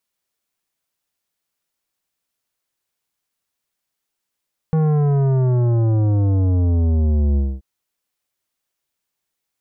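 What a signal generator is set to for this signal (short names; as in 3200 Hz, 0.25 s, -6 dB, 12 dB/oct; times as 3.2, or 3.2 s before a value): sub drop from 160 Hz, over 2.88 s, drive 12 dB, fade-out 0.24 s, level -15 dB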